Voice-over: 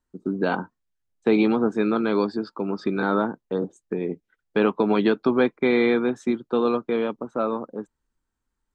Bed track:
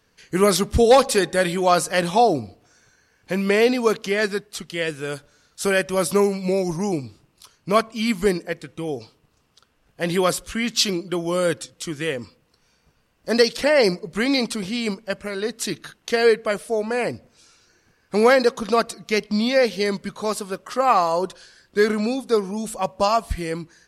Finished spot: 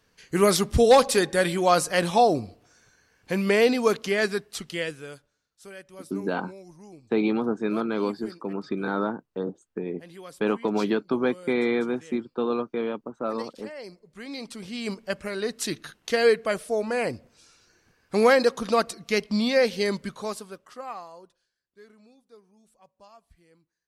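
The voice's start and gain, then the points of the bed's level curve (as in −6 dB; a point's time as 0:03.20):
5.85 s, −4.5 dB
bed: 0:04.74 −2.5 dB
0:05.51 −23.5 dB
0:13.96 −23.5 dB
0:15.04 −3 dB
0:20.06 −3 dB
0:21.58 −33 dB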